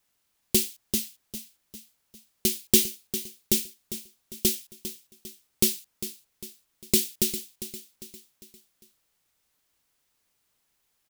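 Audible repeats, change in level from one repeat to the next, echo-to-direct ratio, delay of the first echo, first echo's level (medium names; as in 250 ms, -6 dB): 4, -7.0 dB, -11.5 dB, 401 ms, -12.5 dB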